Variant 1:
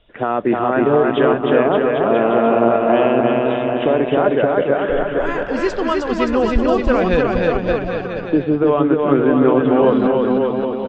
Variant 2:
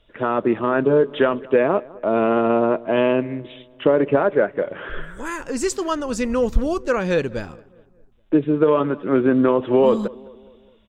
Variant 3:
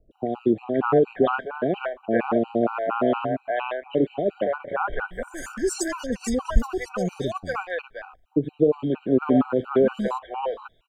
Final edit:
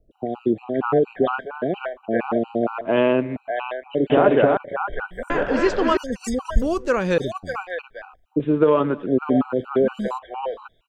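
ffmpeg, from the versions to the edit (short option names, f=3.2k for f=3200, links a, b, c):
-filter_complex "[1:a]asplit=3[a][b][c];[0:a]asplit=2[d][e];[2:a]asplit=6[f][g][h][i][j][k];[f]atrim=end=2.812[l];[a]atrim=start=2.808:end=3.362[m];[g]atrim=start=3.358:end=4.102[n];[d]atrim=start=4.098:end=4.572[o];[h]atrim=start=4.568:end=5.302[p];[e]atrim=start=5.298:end=5.972[q];[i]atrim=start=5.968:end=6.622[r];[b]atrim=start=6.618:end=7.182[s];[j]atrim=start=7.178:end=8.402[t];[c]atrim=start=8.398:end=9.062[u];[k]atrim=start=9.058[v];[l][m]acrossfade=d=0.004:c1=hsin:c2=hsin[w];[w][n]acrossfade=d=0.004:c1=hsin:c2=hsin[x];[x][o]acrossfade=d=0.004:c1=hsin:c2=hsin[y];[y][p]acrossfade=d=0.004:c1=hsin:c2=hsin[z];[z][q]acrossfade=d=0.004:c1=hsin:c2=hsin[aa];[aa][r]acrossfade=d=0.004:c1=hsin:c2=hsin[ab];[ab][s]acrossfade=d=0.004:c1=hsin:c2=hsin[ac];[ac][t]acrossfade=d=0.004:c1=hsin:c2=hsin[ad];[ad][u]acrossfade=d=0.004:c1=hsin:c2=hsin[ae];[ae][v]acrossfade=d=0.004:c1=hsin:c2=hsin"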